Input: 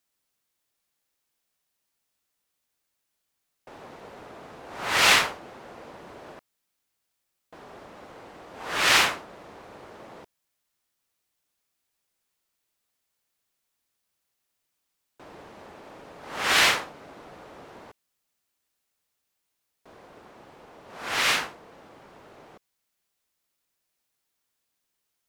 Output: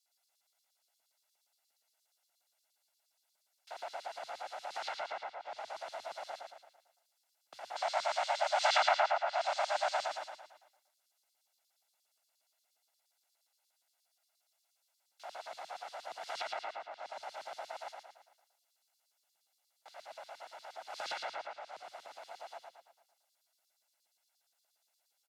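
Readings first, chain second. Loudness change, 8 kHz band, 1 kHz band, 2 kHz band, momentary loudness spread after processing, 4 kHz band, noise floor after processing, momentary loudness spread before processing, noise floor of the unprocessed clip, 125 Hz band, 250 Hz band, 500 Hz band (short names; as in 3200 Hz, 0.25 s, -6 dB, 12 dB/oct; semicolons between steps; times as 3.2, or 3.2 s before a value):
-15.5 dB, -16.5 dB, -3.0 dB, -14.0 dB, 20 LU, -14.0 dB, -81 dBFS, 21 LU, -80 dBFS, under -30 dB, under -25 dB, -1.0 dB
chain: minimum comb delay 1.5 ms; treble ducked by the level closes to 930 Hz, closed at -24 dBFS; notches 60/120/180/240/300/360/420/480/540/600 Hz; LFO high-pass square 8.5 Hz 540–4200 Hz; low shelf 120 Hz -6.5 dB; compressor 16:1, threshold -38 dBFS, peak gain reduction 17 dB; spectral gain 7.76–10.06, 470–8800 Hz +12 dB; frequency shift +98 Hz; feedback echo 0.112 s, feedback 48%, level -4 dB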